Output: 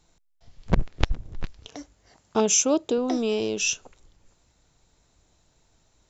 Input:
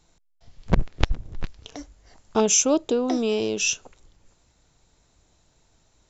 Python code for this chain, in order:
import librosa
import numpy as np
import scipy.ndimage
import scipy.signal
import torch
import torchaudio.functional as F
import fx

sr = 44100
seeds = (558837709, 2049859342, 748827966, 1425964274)

y = fx.highpass(x, sr, hz=77.0, slope=12, at=(1.68, 2.98))
y = y * librosa.db_to_amplitude(-1.5)